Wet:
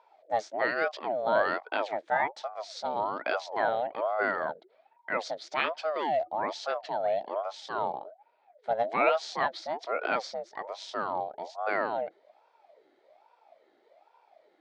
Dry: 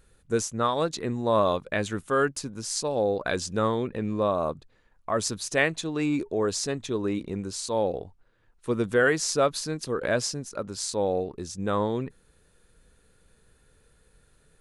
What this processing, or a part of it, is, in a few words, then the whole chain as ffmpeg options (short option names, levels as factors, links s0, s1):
voice changer toy: -af "aeval=exprs='val(0)*sin(2*PI*640*n/s+640*0.5/1.2*sin(2*PI*1.2*n/s))':c=same,highpass=470,equalizer=f=630:t=q:w=4:g=9,equalizer=f=1100:t=q:w=4:g=-7,equalizer=f=2800:t=q:w=4:g=-7,lowpass=f=4100:w=0.5412,lowpass=f=4100:w=1.3066,volume=1.12"